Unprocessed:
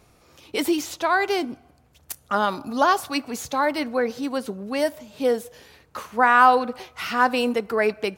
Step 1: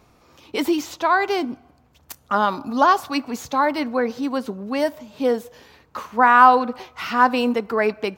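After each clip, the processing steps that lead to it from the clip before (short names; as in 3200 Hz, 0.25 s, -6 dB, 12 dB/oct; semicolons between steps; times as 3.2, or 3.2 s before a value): fifteen-band EQ 250 Hz +4 dB, 1000 Hz +5 dB, 10000 Hz -8 dB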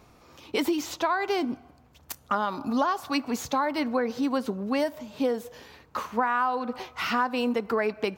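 compressor 8:1, threshold -22 dBFS, peak gain reduction 15.5 dB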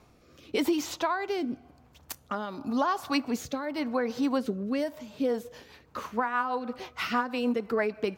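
rotary speaker horn 0.9 Hz, later 6.3 Hz, at 4.77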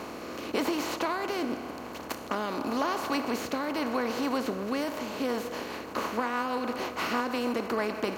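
per-bin compression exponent 0.4; gain -6.5 dB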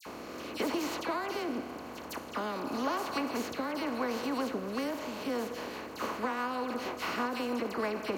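dispersion lows, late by 63 ms, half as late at 2100 Hz; gain -3.5 dB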